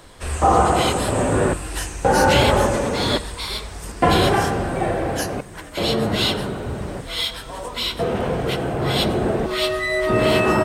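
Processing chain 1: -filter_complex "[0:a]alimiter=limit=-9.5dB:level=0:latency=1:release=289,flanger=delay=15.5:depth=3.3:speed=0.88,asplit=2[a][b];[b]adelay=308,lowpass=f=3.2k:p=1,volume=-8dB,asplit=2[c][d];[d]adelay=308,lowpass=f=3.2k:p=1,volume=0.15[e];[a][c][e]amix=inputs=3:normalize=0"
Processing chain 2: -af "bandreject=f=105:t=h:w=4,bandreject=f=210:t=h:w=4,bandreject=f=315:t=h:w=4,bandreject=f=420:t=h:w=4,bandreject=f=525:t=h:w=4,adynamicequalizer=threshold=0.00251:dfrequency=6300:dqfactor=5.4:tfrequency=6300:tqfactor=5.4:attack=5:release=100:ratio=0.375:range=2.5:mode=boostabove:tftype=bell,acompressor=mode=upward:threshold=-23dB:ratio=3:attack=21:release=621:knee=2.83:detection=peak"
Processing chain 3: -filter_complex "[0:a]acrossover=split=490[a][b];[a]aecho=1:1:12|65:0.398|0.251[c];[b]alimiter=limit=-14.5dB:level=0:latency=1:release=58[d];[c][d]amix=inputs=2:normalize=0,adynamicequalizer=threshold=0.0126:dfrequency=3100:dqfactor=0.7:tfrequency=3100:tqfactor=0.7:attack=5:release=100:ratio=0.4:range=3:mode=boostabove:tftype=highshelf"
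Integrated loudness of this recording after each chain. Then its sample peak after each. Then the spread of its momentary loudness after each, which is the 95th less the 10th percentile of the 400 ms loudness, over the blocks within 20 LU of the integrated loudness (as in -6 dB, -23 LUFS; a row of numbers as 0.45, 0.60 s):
-24.5, -20.5, -20.5 LUFS; -9.5, -2.5, -5.0 dBFS; 8, 11, 8 LU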